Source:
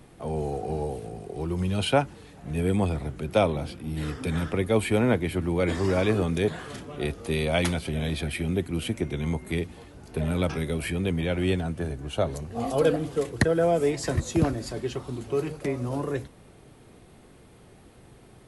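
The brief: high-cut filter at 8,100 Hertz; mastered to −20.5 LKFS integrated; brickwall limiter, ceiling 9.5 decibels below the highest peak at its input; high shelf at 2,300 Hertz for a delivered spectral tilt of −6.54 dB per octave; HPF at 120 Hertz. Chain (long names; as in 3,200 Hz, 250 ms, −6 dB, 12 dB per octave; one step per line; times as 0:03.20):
high-pass filter 120 Hz
low-pass filter 8,100 Hz
high-shelf EQ 2,300 Hz −8.5 dB
level +11 dB
brickwall limiter −9 dBFS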